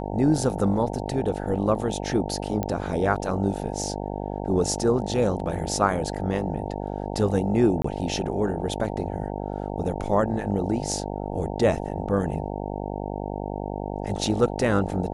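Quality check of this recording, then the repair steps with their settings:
buzz 50 Hz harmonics 18 -31 dBFS
2.63 pop -14 dBFS
7.82–7.84 gap 24 ms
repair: de-click; de-hum 50 Hz, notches 18; interpolate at 7.82, 24 ms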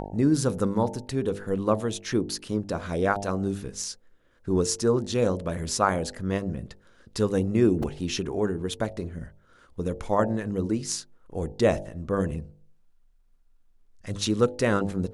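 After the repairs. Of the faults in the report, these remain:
none

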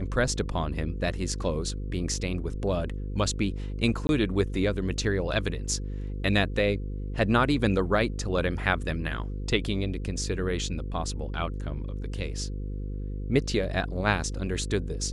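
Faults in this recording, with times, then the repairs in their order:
buzz 50 Hz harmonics 10 -33 dBFS
4.07–4.09 gap 21 ms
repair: de-hum 50 Hz, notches 10; interpolate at 4.07, 21 ms

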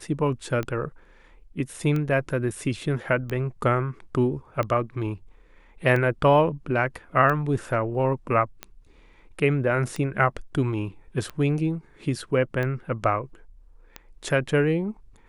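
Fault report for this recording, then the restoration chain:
tick 45 rpm -17 dBFS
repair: de-click

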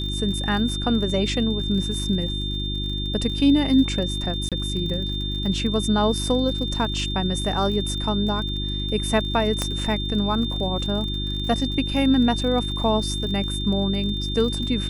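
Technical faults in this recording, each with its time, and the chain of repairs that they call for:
crackle 48/s -31 dBFS
hum 50 Hz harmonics 7 -28 dBFS
tone 3600 Hz -29 dBFS
4.49–4.52 gap 27 ms
9.62 pop -9 dBFS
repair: de-click; notch 3600 Hz, Q 30; de-hum 50 Hz, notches 7; interpolate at 4.49, 27 ms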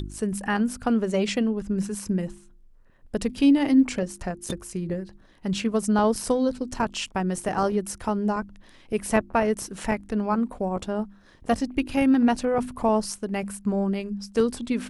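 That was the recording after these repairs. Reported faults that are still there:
none

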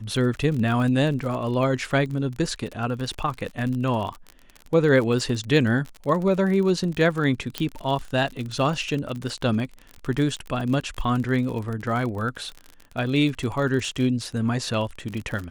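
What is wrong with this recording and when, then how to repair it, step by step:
crackle 40/s -29 dBFS
7.58 pop -10 dBFS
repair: de-click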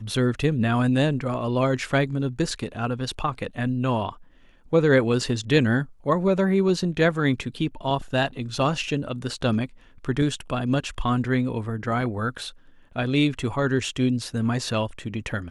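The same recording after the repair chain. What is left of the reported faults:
none

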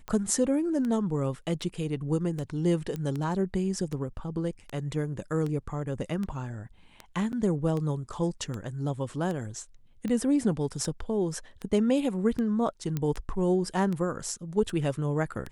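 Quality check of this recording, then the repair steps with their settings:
tick 78 rpm -22 dBFS
2.96 pop -23 dBFS
7.32–7.33 gap 9.1 ms
12.97 pop -17 dBFS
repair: de-click; interpolate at 7.32, 9.1 ms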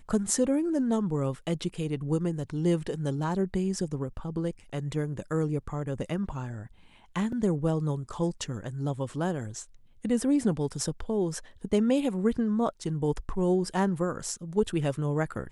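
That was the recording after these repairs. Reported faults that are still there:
2.96 pop
12.97 pop

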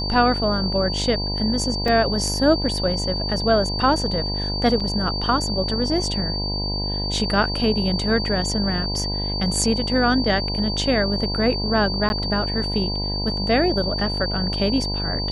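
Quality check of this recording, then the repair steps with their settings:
buzz 50 Hz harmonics 20 -27 dBFS
tone 4600 Hz -26 dBFS
1.88 gap 3.1 ms
4.8–4.81 gap 5.2 ms
12.09–12.1 gap 11 ms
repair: de-hum 50 Hz, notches 20; notch 4600 Hz, Q 30; interpolate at 1.88, 3.1 ms; interpolate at 4.8, 5.2 ms; interpolate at 12.09, 11 ms

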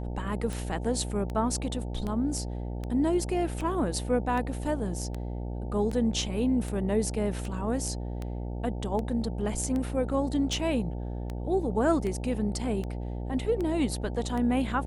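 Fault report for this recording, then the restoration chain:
buzz 60 Hz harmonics 15 -34 dBFS
tick 78 rpm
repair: de-click; de-hum 60 Hz, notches 15

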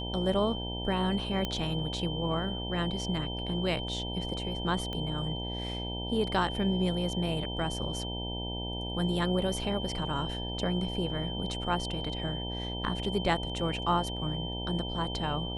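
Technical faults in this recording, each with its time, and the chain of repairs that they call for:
buzz 60 Hz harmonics 16 -37 dBFS
tone 3100 Hz -38 dBFS
1.45 pop -18 dBFS
4.93 pop -24 dBFS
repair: de-click; notch 3100 Hz, Q 30; de-hum 60 Hz, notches 16

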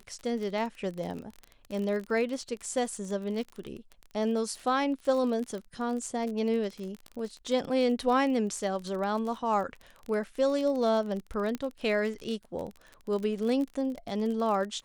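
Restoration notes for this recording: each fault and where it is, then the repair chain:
crackle 34/s -34 dBFS
11.55 pop -20 dBFS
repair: de-click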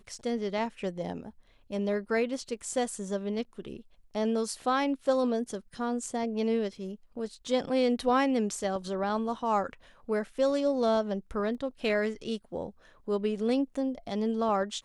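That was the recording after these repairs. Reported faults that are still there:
11.55 pop

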